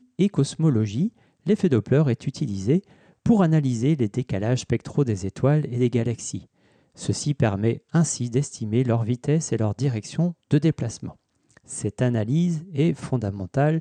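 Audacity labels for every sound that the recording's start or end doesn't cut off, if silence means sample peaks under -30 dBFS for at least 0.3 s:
1.470000	2.790000	sound
3.260000	6.390000	sound
7.010000	11.090000	sound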